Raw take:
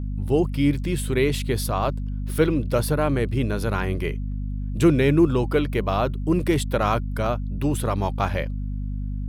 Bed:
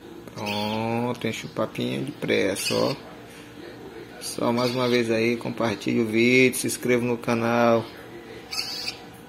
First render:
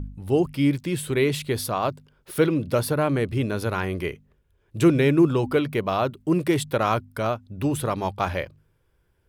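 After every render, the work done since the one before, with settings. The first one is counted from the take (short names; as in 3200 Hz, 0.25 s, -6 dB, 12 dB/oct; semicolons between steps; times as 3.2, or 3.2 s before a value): de-hum 50 Hz, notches 5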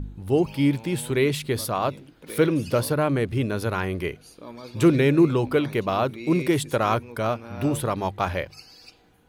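add bed -17.5 dB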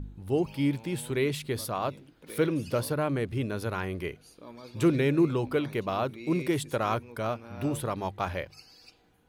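gain -6 dB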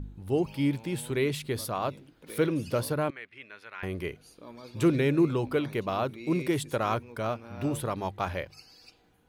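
3.1–3.83 band-pass 2100 Hz, Q 2.3; 6.78–7.67 median filter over 3 samples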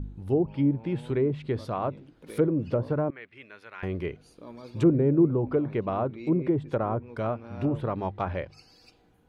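treble ducked by the level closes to 800 Hz, closed at -23 dBFS; tilt shelf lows +3.5 dB, about 1100 Hz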